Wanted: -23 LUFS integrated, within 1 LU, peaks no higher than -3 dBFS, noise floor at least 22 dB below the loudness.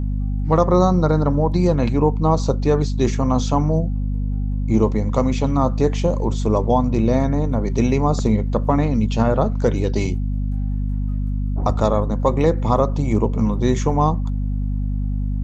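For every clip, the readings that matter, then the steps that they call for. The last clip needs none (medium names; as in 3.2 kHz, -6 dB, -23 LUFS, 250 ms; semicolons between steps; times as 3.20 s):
hum 50 Hz; highest harmonic 250 Hz; hum level -19 dBFS; loudness -20.0 LUFS; peak level -2.0 dBFS; loudness target -23.0 LUFS
-> de-hum 50 Hz, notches 5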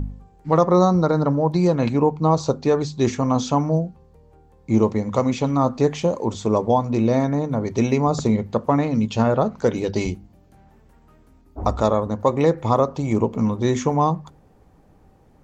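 hum not found; loudness -20.5 LUFS; peak level -3.5 dBFS; loudness target -23.0 LUFS
-> trim -2.5 dB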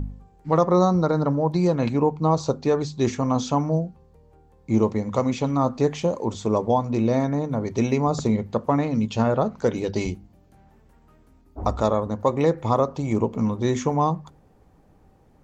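loudness -23.0 LUFS; peak level -6.0 dBFS; noise floor -56 dBFS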